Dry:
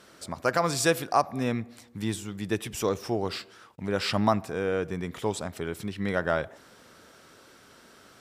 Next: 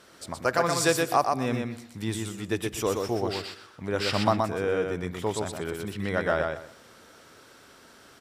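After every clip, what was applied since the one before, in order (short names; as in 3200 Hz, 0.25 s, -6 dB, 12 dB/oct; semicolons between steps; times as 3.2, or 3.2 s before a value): bell 190 Hz -3.5 dB 0.6 oct; feedback echo 0.123 s, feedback 21%, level -4 dB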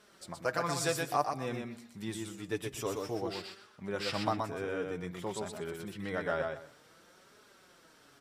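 flange 0.54 Hz, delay 4.7 ms, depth 2.9 ms, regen +30%; gain -4 dB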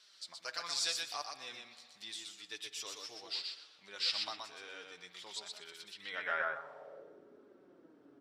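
spring tank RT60 2.9 s, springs 58 ms, chirp 65 ms, DRR 15 dB; band-pass sweep 4300 Hz -> 320 Hz, 5.98–7.21; gain +8 dB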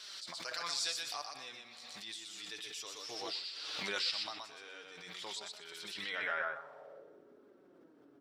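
de-hum 94.95 Hz, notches 2; backwards sustainer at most 24 dB/s; gain -2 dB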